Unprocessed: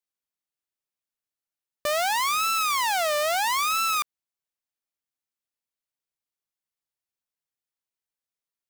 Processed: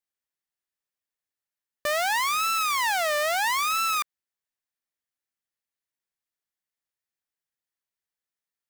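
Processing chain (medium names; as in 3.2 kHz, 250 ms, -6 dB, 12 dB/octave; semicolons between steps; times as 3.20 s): peaking EQ 1.8 kHz +6 dB 0.42 oct; trim -1.5 dB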